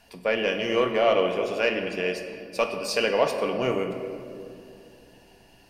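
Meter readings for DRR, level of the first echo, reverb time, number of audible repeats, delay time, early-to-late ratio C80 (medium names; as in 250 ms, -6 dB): 3.5 dB, no echo, 2.7 s, no echo, no echo, 7.5 dB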